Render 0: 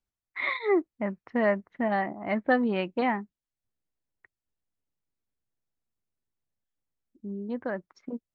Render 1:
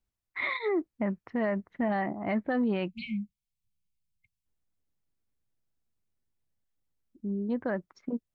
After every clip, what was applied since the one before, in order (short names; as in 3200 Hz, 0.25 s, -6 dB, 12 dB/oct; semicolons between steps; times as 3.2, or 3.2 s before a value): spectral delete 2.89–4.45, 220–2100 Hz; low shelf 250 Hz +6.5 dB; limiter -22 dBFS, peak gain reduction 10 dB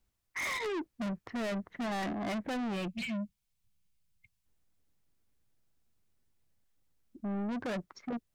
soft clip -39.5 dBFS, distortion -5 dB; gain +6.5 dB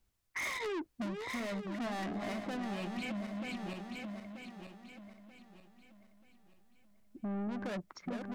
regenerating reverse delay 0.467 s, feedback 58%, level -5.5 dB; compressor, threshold -37 dBFS, peak gain reduction 7 dB; gain +1 dB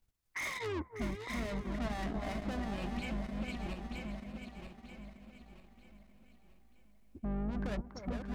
octaver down 2 oct, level 0 dB; echo with dull and thin repeats by turns 0.298 s, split 1300 Hz, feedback 58%, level -7.5 dB; transient shaper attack 0 dB, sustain -7 dB; gain -1 dB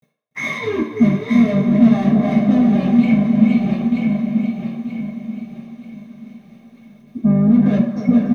bit-crush 11-bit; echo 0.289 s -15.5 dB; reverb RT60 0.65 s, pre-delay 3 ms, DRR -11 dB; gain -1.5 dB